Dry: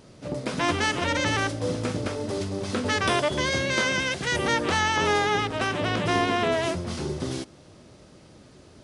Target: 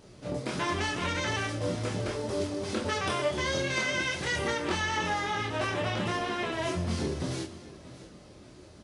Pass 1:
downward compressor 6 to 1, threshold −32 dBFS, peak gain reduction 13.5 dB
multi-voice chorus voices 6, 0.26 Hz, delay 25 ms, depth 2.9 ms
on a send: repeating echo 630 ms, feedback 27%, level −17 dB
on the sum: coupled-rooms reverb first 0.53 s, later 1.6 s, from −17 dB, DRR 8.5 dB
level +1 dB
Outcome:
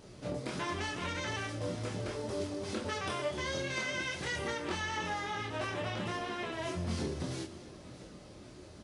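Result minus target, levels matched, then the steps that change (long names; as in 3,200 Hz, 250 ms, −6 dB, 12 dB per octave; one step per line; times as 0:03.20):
downward compressor: peak gain reduction +6.5 dB
change: downward compressor 6 to 1, threshold −24.5 dBFS, peak gain reduction 7 dB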